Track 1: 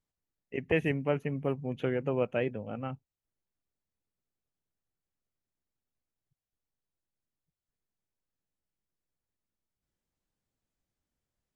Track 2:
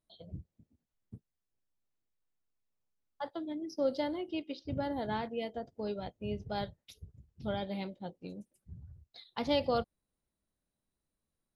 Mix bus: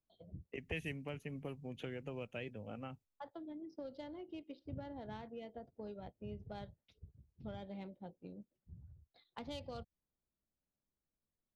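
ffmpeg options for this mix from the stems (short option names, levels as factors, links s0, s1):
-filter_complex "[0:a]agate=range=0.126:threshold=0.00316:ratio=16:detection=peak,equalizer=f=130:w=2:g=-8.5,volume=0.944[s0];[1:a]adynamicsmooth=sensitivity=2:basefreq=2200,volume=0.501[s1];[s0][s1]amix=inputs=2:normalize=0,acrossover=split=140|3000[s2][s3][s4];[s3]acompressor=threshold=0.00562:ratio=6[s5];[s2][s5][s4]amix=inputs=3:normalize=0"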